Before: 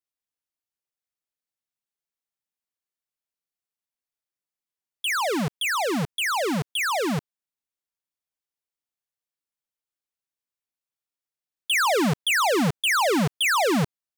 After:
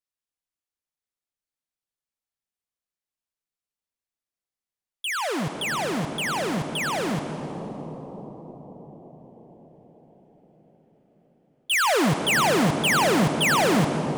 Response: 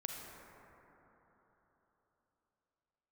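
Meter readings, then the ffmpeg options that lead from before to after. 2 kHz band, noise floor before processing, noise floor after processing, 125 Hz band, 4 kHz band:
0.0 dB, below −85 dBFS, below −85 dBFS, +2.0 dB, −0.5 dB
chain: -filter_complex "[0:a]agate=range=-12dB:threshold=-24dB:ratio=16:detection=peak,asoftclip=type=tanh:threshold=-30.5dB,asplit=2[link_01][link_02];[1:a]atrim=start_sample=2205,asetrate=22050,aresample=44100,lowshelf=frequency=83:gain=8.5[link_03];[link_02][link_03]afir=irnorm=-1:irlink=0,volume=-0.5dB[link_04];[link_01][link_04]amix=inputs=2:normalize=0,volume=4dB"

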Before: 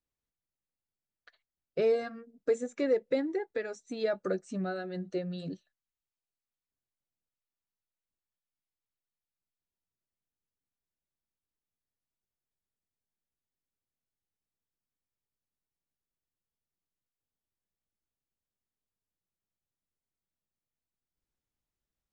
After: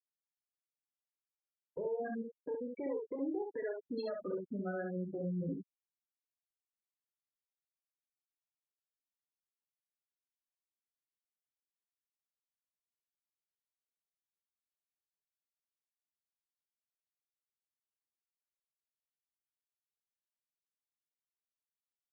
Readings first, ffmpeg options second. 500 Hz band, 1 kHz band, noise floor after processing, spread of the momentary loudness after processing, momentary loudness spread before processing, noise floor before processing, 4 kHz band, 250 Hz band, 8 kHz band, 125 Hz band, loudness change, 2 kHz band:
−8.5 dB, −5.0 dB, below −85 dBFS, 5 LU, 11 LU, below −85 dBFS, −12.5 dB, −3.5 dB, below −20 dB, −1.5 dB, −7.0 dB, −8.0 dB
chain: -filter_complex "[0:a]aeval=exprs='if(lt(val(0),0),0.447*val(0),val(0))':channel_layout=same,acompressor=threshold=-37dB:ratio=5,highpass=54,afftfilt=real='re*gte(hypot(re,im),0.02)':imag='im*gte(hypot(re,im),0.02)':win_size=1024:overlap=0.75,alimiter=level_in=19.5dB:limit=-24dB:level=0:latency=1:release=42,volume=-19.5dB,asplit=2[link_01][link_02];[link_02]aecho=0:1:29|66:0.335|0.631[link_03];[link_01][link_03]amix=inputs=2:normalize=0,volume=10dB"

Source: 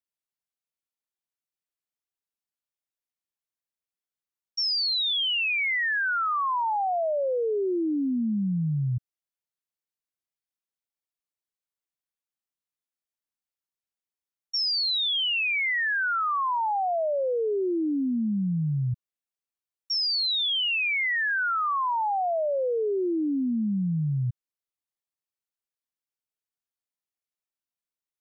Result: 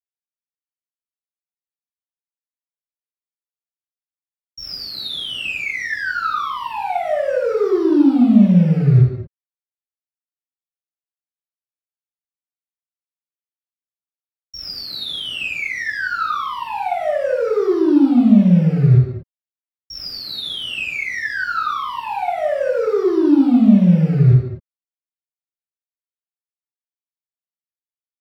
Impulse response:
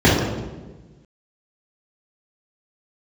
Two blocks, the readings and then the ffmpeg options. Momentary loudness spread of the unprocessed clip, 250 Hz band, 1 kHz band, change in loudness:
5 LU, +14.0 dB, +3.5 dB, +8.5 dB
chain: -filter_complex "[0:a]aeval=exprs='val(0)*gte(abs(val(0)),0.0133)':channel_layout=same,aeval=exprs='(tanh(44.7*val(0)+0.2)-tanh(0.2))/44.7':channel_layout=same[link_01];[1:a]atrim=start_sample=2205,afade=type=out:start_time=0.27:duration=0.01,atrim=end_sample=12348,asetrate=34398,aresample=44100[link_02];[link_01][link_02]afir=irnorm=-1:irlink=0,volume=-14dB"

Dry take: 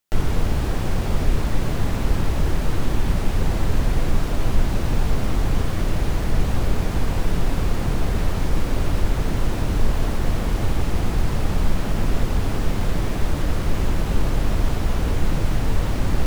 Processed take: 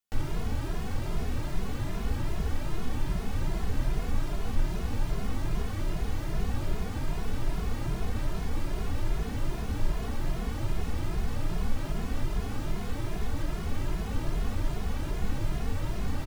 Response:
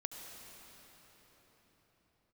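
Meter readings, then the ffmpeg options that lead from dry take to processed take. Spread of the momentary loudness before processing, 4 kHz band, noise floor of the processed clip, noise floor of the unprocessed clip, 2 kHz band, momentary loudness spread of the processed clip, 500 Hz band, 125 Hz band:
1 LU, −9.5 dB, −34 dBFS, −24 dBFS, −9.5 dB, 2 LU, −10.5 dB, −9.5 dB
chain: -filter_complex "[0:a]bandreject=frequency=520:width=12,asplit=2[link_01][link_02];[link_02]adelay=2.4,afreqshift=2.5[link_03];[link_01][link_03]amix=inputs=2:normalize=1,volume=-6.5dB"

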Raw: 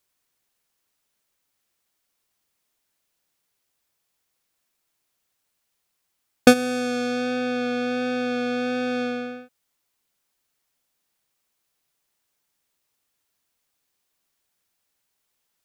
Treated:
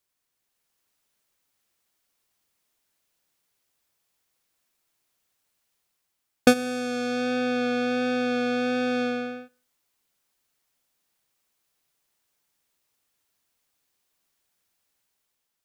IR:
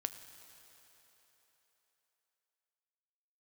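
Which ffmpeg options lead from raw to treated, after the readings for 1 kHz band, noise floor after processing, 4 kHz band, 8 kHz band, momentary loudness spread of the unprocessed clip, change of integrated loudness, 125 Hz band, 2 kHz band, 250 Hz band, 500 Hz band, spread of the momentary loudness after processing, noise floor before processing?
−1.5 dB, −80 dBFS, −2.0 dB, −3.5 dB, 11 LU, −2.0 dB, −2.5 dB, −1.5 dB, −2.0 dB, −2.0 dB, 7 LU, −76 dBFS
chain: -filter_complex "[0:a]dynaudnorm=framelen=160:gausssize=7:maxgain=5dB,asplit=2[link_01][link_02];[1:a]atrim=start_sample=2205,afade=type=out:start_time=0.25:duration=0.01,atrim=end_sample=11466[link_03];[link_02][link_03]afir=irnorm=-1:irlink=0,volume=-14.5dB[link_04];[link_01][link_04]amix=inputs=2:normalize=0,volume=-6dB"

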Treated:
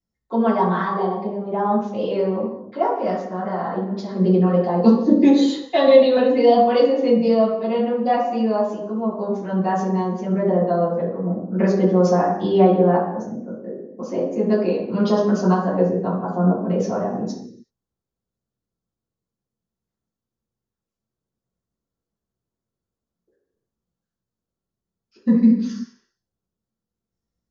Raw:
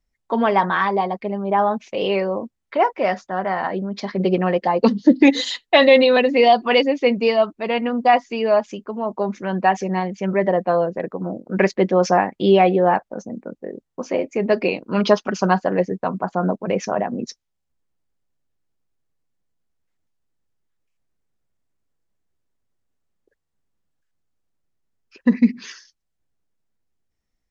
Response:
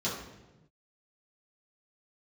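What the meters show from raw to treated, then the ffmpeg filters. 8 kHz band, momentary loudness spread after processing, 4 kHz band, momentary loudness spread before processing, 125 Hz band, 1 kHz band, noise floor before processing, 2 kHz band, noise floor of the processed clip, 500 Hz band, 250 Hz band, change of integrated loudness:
can't be measured, 12 LU, −8.0 dB, 13 LU, +4.5 dB, −3.0 dB, −76 dBFS, −10.0 dB, below −85 dBFS, 0.0 dB, +2.5 dB, 0.0 dB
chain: -filter_complex "[0:a]equalizer=frequency=2400:width_type=o:width=0.83:gain=-10[link_01];[1:a]atrim=start_sample=2205,afade=type=out:start_time=0.44:duration=0.01,atrim=end_sample=19845[link_02];[link_01][link_02]afir=irnorm=-1:irlink=0,volume=-10dB"

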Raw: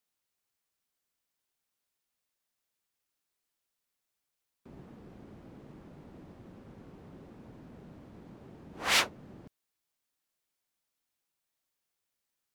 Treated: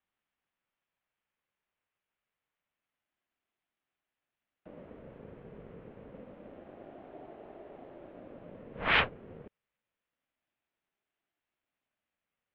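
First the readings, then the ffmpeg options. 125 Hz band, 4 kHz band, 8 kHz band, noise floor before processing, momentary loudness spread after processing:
+1.5 dB, −4.5 dB, below −35 dB, below −85 dBFS, 9 LU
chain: -af "asubboost=boost=8.5:cutoff=220,highpass=frequency=340:width_type=q:width=0.5412,highpass=frequency=340:width_type=q:width=1.307,lowpass=frequency=3000:width_type=q:width=0.5176,lowpass=frequency=3000:width_type=q:width=0.7071,lowpass=frequency=3000:width_type=q:width=1.932,afreqshift=-170,aeval=exprs='val(0)*sin(2*PI*410*n/s+410*0.25/0.27*sin(2*PI*0.27*n/s))':channel_layout=same,volume=6.5dB"

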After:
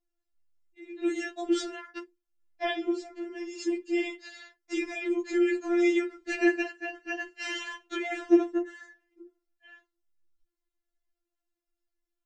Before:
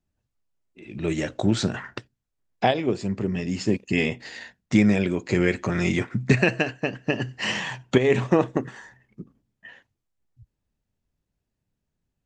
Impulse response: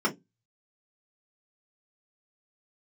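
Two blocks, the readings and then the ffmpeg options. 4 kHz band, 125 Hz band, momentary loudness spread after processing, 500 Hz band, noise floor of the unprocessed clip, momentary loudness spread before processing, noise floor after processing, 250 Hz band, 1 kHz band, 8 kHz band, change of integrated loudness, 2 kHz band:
−7.5 dB, below −40 dB, 15 LU, −5.0 dB, −81 dBFS, 12 LU, below −85 dBFS, −4.5 dB, −9.0 dB, −6.5 dB, −5.5 dB, −6.0 dB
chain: -filter_complex "[0:a]equalizer=frequency=570:width_type=o:width=1:gain=-5.5,asplit=2[link_01][link_02];[1:a]atrim=start_sample=2205,lowpass=3000[link_03];[link_02][link_03]afir=irnorm=-1:irlink=0,volume=-12dB[link_04];[link_01][link_04]amix=inputs=2:normalize=0,afftfilt=real='re*4*eq(mod(b,16),0)':imag='im*4*eq(mod(b,16),0)':win_size=2048:overlap=0.75,volume=-4.5dB"

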